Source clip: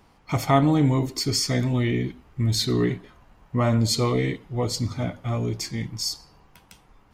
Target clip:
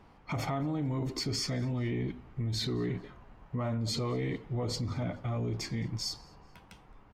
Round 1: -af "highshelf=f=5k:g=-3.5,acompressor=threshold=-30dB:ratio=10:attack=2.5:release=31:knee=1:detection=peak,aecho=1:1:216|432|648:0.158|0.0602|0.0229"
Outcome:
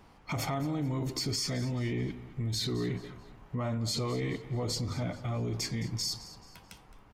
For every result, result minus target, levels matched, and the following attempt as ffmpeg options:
echo-to-direct +11 dB; 8000 Hz band +3.5 dB
-af "highshelf=f=5k:g=-3.5,acompressor=threshold=-30dB:ratio=10:attack=2.5:release=31:knee=1:detection=peak,aecho=1:1:216|432:0.0447|0.017"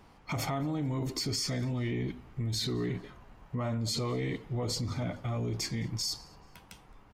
8000 Hz band +3.5 dB
-af "highshelf=f=5k:g=-15.5,acompressor=threshold=-30dB:ratio=10:attack=2.5:release=31:knee=1:detection=peak,aecho=1:1:216|432:0.0447|0.017"

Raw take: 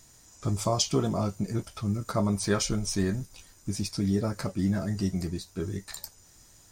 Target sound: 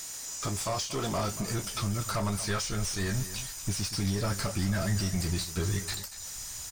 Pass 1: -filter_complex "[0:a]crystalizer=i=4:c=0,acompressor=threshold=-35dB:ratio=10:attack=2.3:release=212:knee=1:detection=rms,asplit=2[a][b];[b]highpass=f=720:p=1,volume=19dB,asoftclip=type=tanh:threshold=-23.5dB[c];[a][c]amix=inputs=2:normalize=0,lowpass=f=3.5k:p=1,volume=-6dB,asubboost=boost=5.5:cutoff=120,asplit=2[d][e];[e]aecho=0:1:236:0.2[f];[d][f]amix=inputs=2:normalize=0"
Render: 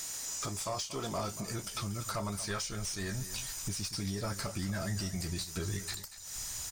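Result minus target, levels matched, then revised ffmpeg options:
compressor: peak gain reduction +9 dB
-filter_complex "[0:a]crystalizer=i=4:c=0,acompressor=threshold=-25dB:ratio=10:attack=2.3:release=212:knee=1:detection=rms,asplit=2[a][b];[b]highpass=f=720:p=1,volume=19dB,asoftclip=type=tanh:threshold=-23.5dB[c];[a][c]amix=inputs=2:normalize=0,lowpass=f=3.5k:p=1,volume=-6dB,asubboost=boost=5.5:cutoff=120,asplit=2[d][e];[e]aecho=0:1:236:0.2[f];[d][f]amix=inputs=2:normalize=0"

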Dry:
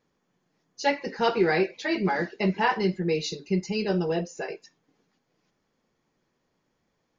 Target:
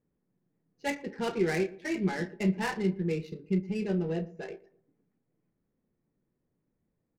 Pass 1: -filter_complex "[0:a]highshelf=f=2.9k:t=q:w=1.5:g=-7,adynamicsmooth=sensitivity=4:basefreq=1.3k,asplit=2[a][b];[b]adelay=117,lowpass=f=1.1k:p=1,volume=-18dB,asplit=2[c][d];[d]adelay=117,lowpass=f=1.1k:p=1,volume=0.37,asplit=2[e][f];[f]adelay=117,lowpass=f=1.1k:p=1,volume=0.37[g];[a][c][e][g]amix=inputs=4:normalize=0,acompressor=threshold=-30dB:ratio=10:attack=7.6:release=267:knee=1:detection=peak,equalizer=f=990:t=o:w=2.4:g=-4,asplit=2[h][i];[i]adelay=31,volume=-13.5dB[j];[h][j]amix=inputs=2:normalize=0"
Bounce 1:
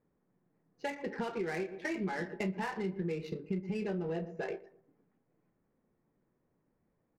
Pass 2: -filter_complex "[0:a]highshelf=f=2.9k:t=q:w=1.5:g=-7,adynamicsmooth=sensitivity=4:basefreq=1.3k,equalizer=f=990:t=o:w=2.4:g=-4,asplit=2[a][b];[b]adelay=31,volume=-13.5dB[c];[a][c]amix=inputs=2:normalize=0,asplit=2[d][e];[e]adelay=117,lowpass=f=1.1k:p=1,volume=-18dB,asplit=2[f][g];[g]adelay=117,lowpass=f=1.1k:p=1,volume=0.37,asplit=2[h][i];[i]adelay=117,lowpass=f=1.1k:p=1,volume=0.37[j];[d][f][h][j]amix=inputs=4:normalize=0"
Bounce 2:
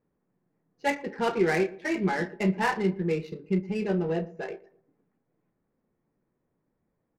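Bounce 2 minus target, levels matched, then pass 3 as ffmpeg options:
1000 Hz band +4.5 dB
-filter_complex "[0:a]highshelf=f=2.9k:t=q:w=1.5:g=-7,adynamicsmooth=sensitivity=4:basefreq=1.3k,equalizer=f=990:t=o:w=2.4:g=-12.5,asplit=2[a][b];[b]adelay=31,volume=-13.5dB[c];[a][c]amix=inputs=2:normalize=0,asplit=2[d][e];[e]adelay=117,lowpass=f=1.1k:p=1,volume=-18dB,asplit=2[f][g];[g]adelay=117,lowpass=f=1.1k:p=1,volume=0.37,asplit=2[h][i];[i]adelay=117,lowpass=f=1.1k:p=1,volume=0.37[j];[d][f][h][j]amix=inputs=4:normalize=0"

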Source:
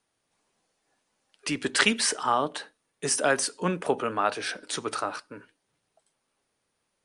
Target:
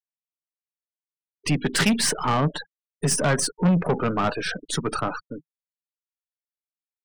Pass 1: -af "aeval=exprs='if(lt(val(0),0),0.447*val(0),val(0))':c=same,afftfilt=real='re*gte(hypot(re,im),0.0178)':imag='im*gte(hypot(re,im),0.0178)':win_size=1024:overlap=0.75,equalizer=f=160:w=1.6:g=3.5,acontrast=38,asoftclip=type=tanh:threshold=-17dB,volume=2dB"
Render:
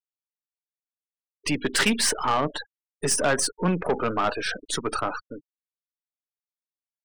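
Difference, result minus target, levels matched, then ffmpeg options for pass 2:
125 Hz band -7.0 dB
-af "aeval=exprs='if(lt(val(0),0),0.447*val(0),val(0))':c=same,afftfilt=real='re*gte(hypot(re,im),0.0178)':imag='im*gte(hypot(re,im),0.0178)':win_size=1024:overlap=0.75,equalizer=f=160:w=1.6:g=15.5,acontrast=38,asoftclip=type=tanh:threshold=-17dB,volume=2dB"

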